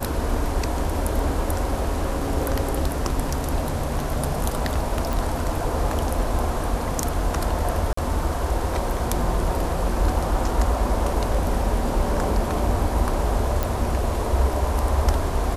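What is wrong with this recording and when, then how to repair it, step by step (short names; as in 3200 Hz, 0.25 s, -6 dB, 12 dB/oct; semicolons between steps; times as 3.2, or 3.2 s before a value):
5.13 pop
7.93–7.97 gap 44 ms
13.63 pop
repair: de-click; interpolate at 7.93, 44 ms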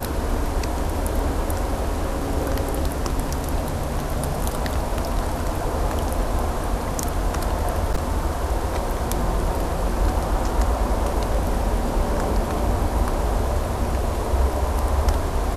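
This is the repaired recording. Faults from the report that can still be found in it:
none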